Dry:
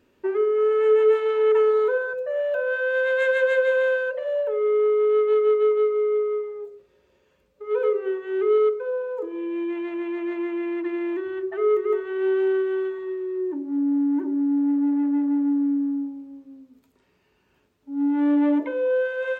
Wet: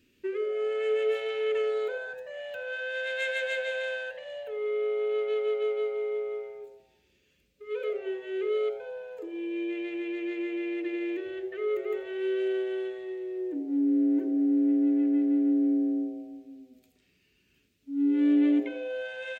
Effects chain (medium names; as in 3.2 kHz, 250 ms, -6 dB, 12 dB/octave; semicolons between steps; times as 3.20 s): FFT filter 300 Hz 0 dB, 850 Hz -20 dB, 2.4 kHz +5 dB; on a send: frequency-shifting echo 82 ms, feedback 49%, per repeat +120 Hz, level -18 dB; on the sum: trim -2.5 dB